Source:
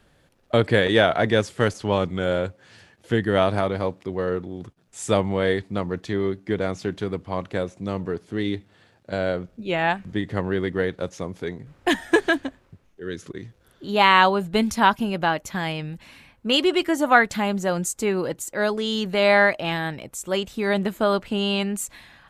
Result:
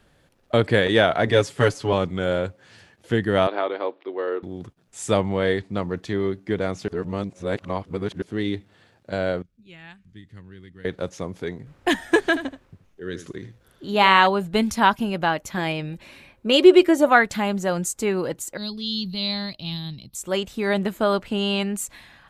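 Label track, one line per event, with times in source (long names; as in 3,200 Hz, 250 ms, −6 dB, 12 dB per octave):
1.270000	1.930000	comb filter 7.1 ms, depth 76%
3.470000	4.430000	elliptic band-pass filter 320–3,700 Hz
5.160000	5.820000	low-pass filter 9,800 Hz
6.880000	8.220000	reverse
9.420000	10.850000	guitar amp tone stack bass-middle-treble 6-0-2
12.250000	14.270000	single-tap delay 78 ms −12.5 dB
15.570000	17.090000	hollow resonant body resonances 370/560/2,400/3,800 Hz, height 10 dB
18.570000	20.150000	drawn EQ curve 190 Hz 0 dB, 330 Hz −12 dB, 520 Hz −22 dB, 1,100 Hz −17 dB, 1,600 Hz −25 dB, 2,300 Hz −15 dB, 4,300 Hz +9 dB, 7,400 Hz −22 dB, 12,000 Hz −5 dB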